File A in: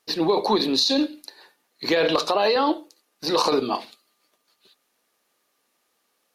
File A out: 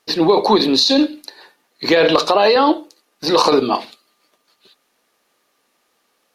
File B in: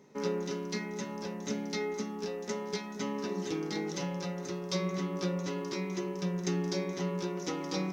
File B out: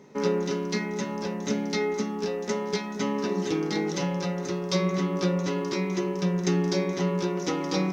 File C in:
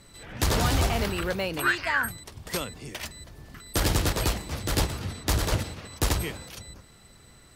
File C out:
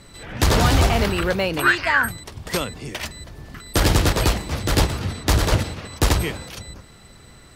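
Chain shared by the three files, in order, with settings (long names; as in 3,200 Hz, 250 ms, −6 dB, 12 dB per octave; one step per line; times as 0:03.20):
high-shelf EQ 7,000 Hz −6 dB
level +7.5 dB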